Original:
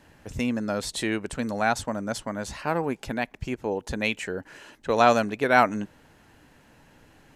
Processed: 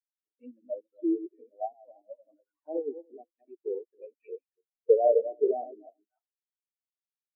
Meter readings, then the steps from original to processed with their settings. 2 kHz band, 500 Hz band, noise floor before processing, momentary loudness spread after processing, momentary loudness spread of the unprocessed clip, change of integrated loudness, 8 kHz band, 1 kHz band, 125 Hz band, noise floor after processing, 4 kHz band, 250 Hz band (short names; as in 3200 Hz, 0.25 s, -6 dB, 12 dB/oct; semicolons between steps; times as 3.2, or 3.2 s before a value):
under -40 dB, -0.5 dB, -58 dBFS, 22 LU, 14 LU, -3.5 dB, under -40 dB, -13.5 dB, under -40 dB, under -85 dBFS, under -40 dB, -8.5 dB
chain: regenerating reverse delay 0.144 s, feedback 48%, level -3 dB; elliptic band-pass 310–8600 Hz, stop band 40 dB; treble ducked by the level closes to 500 Hz, closed at -19 dBFS; envelope flanger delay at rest 6 ms, full sweep at -27 dBFS; spectral expander 4:1; gain +4 dB